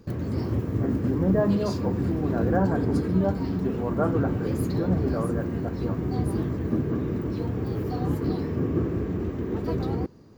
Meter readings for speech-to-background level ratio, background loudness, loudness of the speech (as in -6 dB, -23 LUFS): -1.0 dB, -28.0 LUFS, -29.0 LUFS